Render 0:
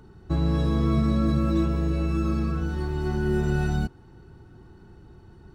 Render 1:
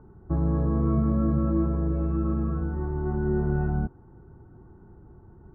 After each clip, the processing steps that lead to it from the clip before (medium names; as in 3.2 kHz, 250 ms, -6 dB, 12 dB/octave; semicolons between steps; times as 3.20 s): low-pass 1.3 kHz 24 dB/octave; trim -1 dB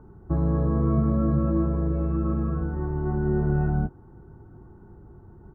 doubling 20 ms -13 dB; trim +2 dB